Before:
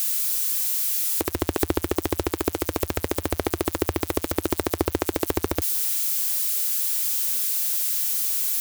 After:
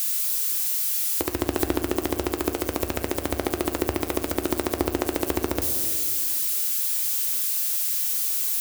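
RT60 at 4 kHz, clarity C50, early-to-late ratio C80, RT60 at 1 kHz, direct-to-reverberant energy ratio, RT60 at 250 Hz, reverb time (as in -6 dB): 1.2 s, 9.0 dB, 10.0 dB, 1.7 s, 6.5 dB, 2.5 s, 1.9 s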